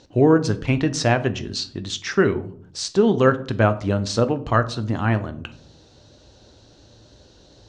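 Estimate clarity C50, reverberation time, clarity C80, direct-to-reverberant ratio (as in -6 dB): 16.5 dB, 0.55 s, 19.5 dB, 10.0 dB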